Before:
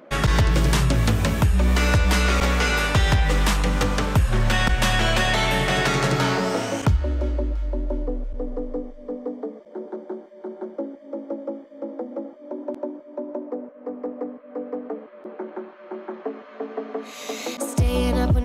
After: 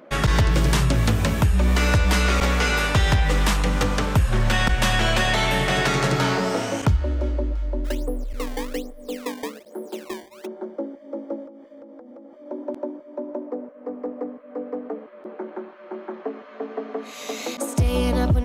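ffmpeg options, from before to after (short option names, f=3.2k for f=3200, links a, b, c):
-filter_complex "[0:a]asplit=3[a][b][c];[a]afade=t=out:st=7.84:d=0.02[d];[b]acrusher=samples=19:mix=1:aa=0.000001:lfo=1:lforange=30.4:lforate=1.2,afade=t=in:st=7.84:d=0.02,afade=t=out:st=10.45:d=0.02[e];[c]afade=t=in:st=10.45:d=0.02[f];[d][e][f]amix=inputs=3:normalize=0,asettb=1/sr,asplit=3[g][h][i];[g]atrim=end=11.464[j];[h]atrim=start=11.46:end=12.46,asetpts=PTS-STARTPTS,afade=t=in:d=0.004:c=qsin,afade=t=out:st=0.996:d=0.004:c=qsin,acompressor=threshold=-39dB:ratio=16:attack=3.2:release=140:knee=1:detection=peak[k];[i]atrim=start=12.456[l];[j][k]acrossfade=d=0.004:c1=hsin:c2=qsin[m];[m][l]acrossfade=d=0.004:c1=qsin:c2=hsin"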